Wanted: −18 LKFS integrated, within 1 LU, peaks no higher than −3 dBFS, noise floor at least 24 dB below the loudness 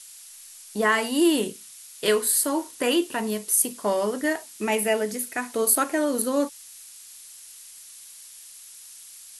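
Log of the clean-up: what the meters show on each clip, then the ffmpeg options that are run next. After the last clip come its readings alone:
background noise floor −46 dBFS; target noise floor −48 dBFS; integrated loudness −23.5 LKFS; sample peak −6.0 dBFS; target loudness −18.0 LKFS
→ -af "afftdn=noise_reduction=6:noise_floor=-46"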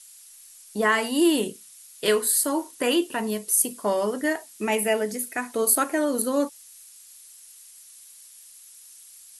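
background noise floor −49 dBFS; integrated loudness −24.0 LKFS; sample peak −6.0 dBFS; target loudness −18.0 LKFS
→ -af "volume=6dB,alimiter=limit=-3dB:level=0:latency=1"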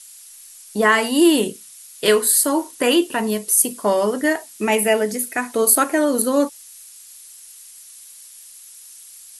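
integrated loudness −18.0 LKFS; sample peak −3.0 dBFS; background noise floor −43 dBFS

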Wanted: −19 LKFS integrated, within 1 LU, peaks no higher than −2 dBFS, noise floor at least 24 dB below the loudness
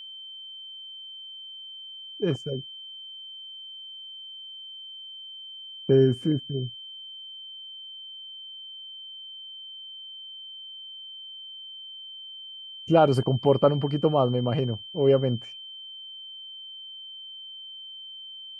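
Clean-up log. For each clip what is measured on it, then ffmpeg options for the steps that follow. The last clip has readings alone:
interfering tone 3,100 Hz; level of the tone −39 dBFS; integrated loudness −29.5 LKFS; sample peak −7.0 dBFS; target loudness −19.0 LKFS
→ -af "bandreject=frequency=3100:width=30"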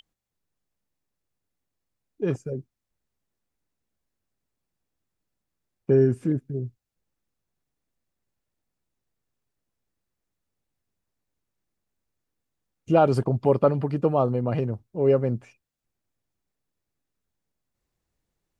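interfering tone none found; integrated loudness −24.0 LKFS; sample peak −7.5 dBFS; target loudness −19.0 LKFS
→ -af "volume=5dB"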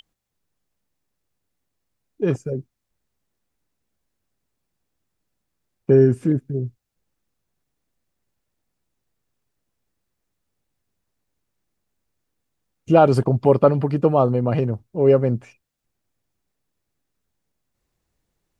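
integrated loudness −19.0 LKFS; sample peak −2.5 dBFS; background noise floor −79 dBFS

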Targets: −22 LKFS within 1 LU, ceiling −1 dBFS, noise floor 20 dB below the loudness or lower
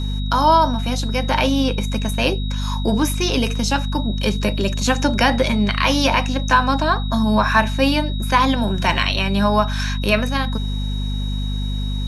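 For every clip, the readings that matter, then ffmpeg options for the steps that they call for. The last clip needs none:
mains hum 50 Hz; hum harmonics up to 250 Hz; level of the hum −20 dBFS; interfering tone 3,800 Hz; level of the tone −33 dBFS; integrated loudness −19.0 LKFS; sample peak −2.5 dBFS; target loudness −22.0 LKFS
→ -af "bandreject=frequency=50:width_type=h:width=4,bandreject=frequency=100:width_type=h:width=4,bandreject=frequency=150:width_type=h:width=4,bandreject=frequency=200:width_type=h:width=4,bandreject=frequency=250:width_type=h:width=4"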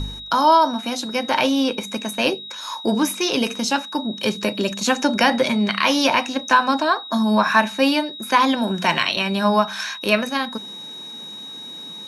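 mains hum none found; interfering tone 3,800 Hz; level of the tone −33 dBFS
→ -af "bandreject=frequency=3800:width=30"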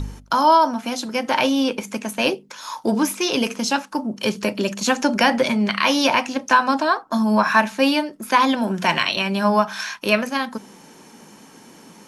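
interfering tone none found; integrated loudness −20.0 LKFS; sample peak −3.5 dBFS; target loudness −22.0 LKFS
→ -af "volume=-2dB"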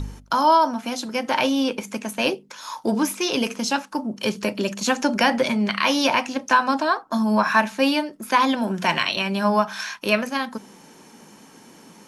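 integrated loudness −22.0 LKFS; sample peak −5.5 dBFS; background noise floor −49 dBFS

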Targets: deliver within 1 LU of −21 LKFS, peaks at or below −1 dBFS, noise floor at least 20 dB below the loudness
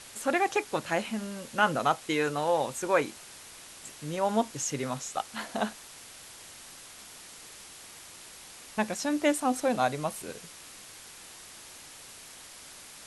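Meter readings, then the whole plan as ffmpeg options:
background noise floor −49 dBFS; target noise floor −50 dBFS; integrated loudness −30.0 LKFS; sample peak −11.0 dBFS; target loudness −21.0 LKFS
→ -af "afftdn=noise_reduction=6:noise_floor=-49"
-af "volume=9dB"

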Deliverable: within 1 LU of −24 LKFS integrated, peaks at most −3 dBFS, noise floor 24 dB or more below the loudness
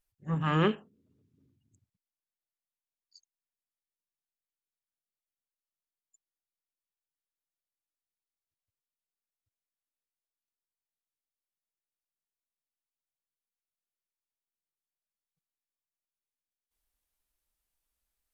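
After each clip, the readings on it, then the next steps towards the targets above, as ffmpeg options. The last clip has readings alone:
integrated loudness −29.0 LKFS; sample peak −14.0 dBFS; target loudness −24.0 LKFS
→ -af "volume=5dB"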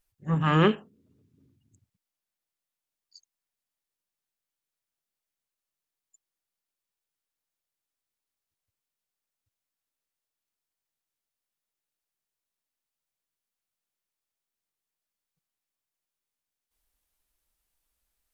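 integrated loudness −24.5 LKFS; sample peak −9.0 dBFS; background noise floor −90 dBFS

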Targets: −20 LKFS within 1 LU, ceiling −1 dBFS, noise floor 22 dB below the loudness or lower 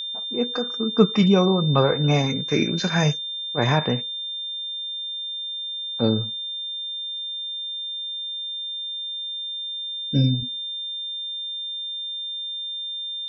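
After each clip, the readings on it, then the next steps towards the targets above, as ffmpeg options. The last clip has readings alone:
interfering tone 3,600 Hz; level of the tone −28 dBFS; integrated loudness −24.0 LKFS; sample peak −4.0 dBFS; target loudness −20.0 LKFS
→ -af "bandreject=frequency=3600:width=30"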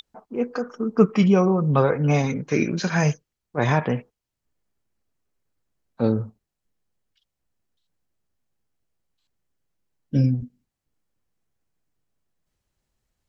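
interfering tone none found; integrated loudness −22.0 LKFS; sample peak −4.5 dBFS; target loudness −20.0 LKFS
→ -af "volume=2dB"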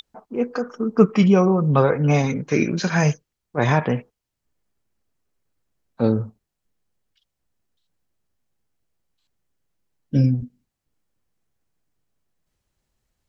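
integrated loudness −20.5 LKFS; sample peak −2.5 dBFS; background noise floor −81 dBFS

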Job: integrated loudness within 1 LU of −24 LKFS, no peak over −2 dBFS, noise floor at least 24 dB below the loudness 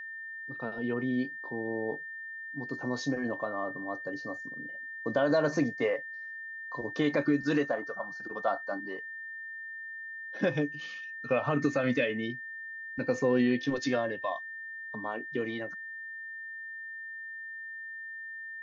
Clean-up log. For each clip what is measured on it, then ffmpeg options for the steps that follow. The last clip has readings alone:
interfering tone 1,800 Hz; level of the tone −39 dBFS; integrated loudness −33.0 LKFS; sample peak −16.0 dBFS; target loudness −24.0 LKFS
→ -af "bandreject=frequency=1800:width=30"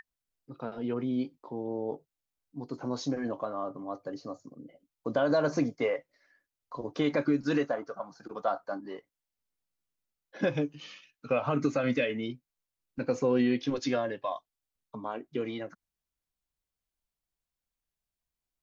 interfering tone none found; integrated loudness −32.0 LKFS; sample peak −15.5 dBFS; target loudness −24.0 LKFS
→ -af "volume=8dB"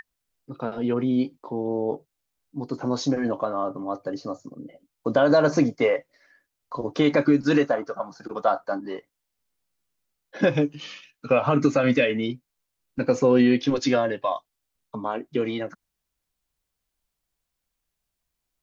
integrated loudness −24.0 LKFS; sample peak −7.5 dBFS; background noise floor −82 dBFS

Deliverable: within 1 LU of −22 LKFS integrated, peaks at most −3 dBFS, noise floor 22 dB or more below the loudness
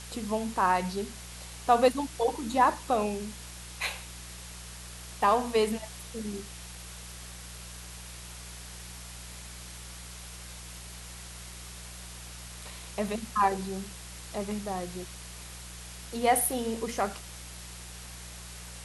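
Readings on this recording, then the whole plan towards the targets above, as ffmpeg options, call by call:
mains hum 60 Hz; hum harmonics up to 180 Hz; level of the hum −45 dBFS; background noise floor −44 dBFS; target noise floor −52 dBFS; integrated loudness −30.0 LKFS; sample peak −9.5 dBFS; target loudness −22.0 LKFS
→ -af "bandreject=frequency=60:width_type=h:width=4,bandreject=frequency=120:width_type=h:width=4,bandreject=frequency=180:width_type=h:width=4"
-af "afftdn=noise_reduction=8:noise_floor=-44"
-af "volume=8dB,alimiter=limit=-3dB:level=0:latency=1"

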